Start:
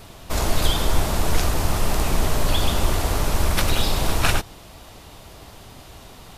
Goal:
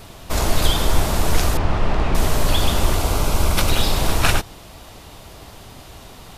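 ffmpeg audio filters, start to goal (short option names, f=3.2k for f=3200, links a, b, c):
-filter_complex "[0:a]asettb=1/sr,asplit=3[a][b][c];[a]atrim=end=1.574[d];[b]atrim=start=1.57:end=2.15,asetpts=PTS-STARTPTS,afade=t=in:d=0.004:c=qsin,afade=t=out:st=0.576:d=0.004:c=qsin,lowpass=2.8k[e];[c]atrim=start=2.146[f];[d][e]acrossfade=d=0.004:c1=hsin:c2=qsin[g];[g][f]acrossfade=d=0.004:c1=qsin:c2=hsin,asettb=1/sr,asplit=3[h][i][j];[h]atrim=end=2.954[k];[i]atrim=start=2.95:end=3.72,asetpts=PTS-STARTPTS,afade=t=in:d=0.004:c=qsin,afade=t=out:st=0.766:d=0.004:c=qsin,bandreject=f=1.8k:w=5.9[l];[j]atrim=start=3.716[m];[k][l]acrossfade=d=0.004:c1=hsin:c2=qsin[n];[n][m]acrossfade=d=0.004:c1=qsin:c2=hsin,volume=2.5dB"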